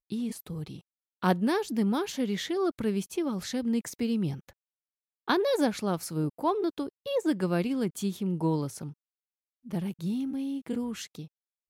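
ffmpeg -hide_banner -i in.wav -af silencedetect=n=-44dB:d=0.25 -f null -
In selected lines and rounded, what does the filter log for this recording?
silence_start: 0.79
silence_end: 1.22 | silence_duration: 0.43
silence_start: 4.50
silence_end: 5.28 | silence_duration: 0.78
silence_start: 8.92
silence_end: 9.66 | silence_duration: 0.73
silence_start: 11.26
silence_end: 11.69 | silence_duration: 0.43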